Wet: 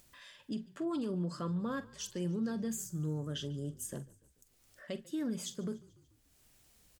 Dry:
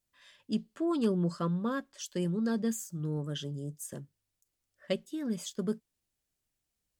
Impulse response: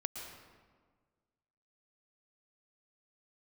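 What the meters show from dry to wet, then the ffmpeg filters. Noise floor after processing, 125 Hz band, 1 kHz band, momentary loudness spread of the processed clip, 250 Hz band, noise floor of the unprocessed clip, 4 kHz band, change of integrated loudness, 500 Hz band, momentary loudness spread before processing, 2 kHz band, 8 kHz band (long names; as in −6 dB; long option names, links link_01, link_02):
−70 dBFS, −3.0 dB, −5.0 dB, 11 LU, −4.5 dB, −85 dBFS, −2.5 dB, −4.5 dB, −6.0 dB, 10 LU, −4.0 dB, −0.5 dB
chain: -filter_complex "[0:a]alimiter=level_in=5.5dB:limit=-24dB:level=0:latency=1:release=77,volume=-5.5dB,acompressor=mode=upward:threshold=-49dB:ratio=2.5,asplit=2[link_01][link_02];[link_02]adelay=45,volume=-13.5dB[link_03];[link_01][link_03]amix=inputs=2:normalize=0,asplit=5[link_04][link_05][link_06][link_07][link_08];[link_05]adelay=145,afreqshift=-37,volume=-22dB[link_09];[link_06]adelay=290,afreqshift=-74,volume=-26.9dB[link_10];[link_07]adelay=435,afreqshift=-111,volume=-31.8dB[link_11];[link_08]adelay=580,afreqshift=-148,volume=-36.6dB[link_12];[link_04][link_09][link_10][link_11][link_12]amix=inputs=5:normalize=0"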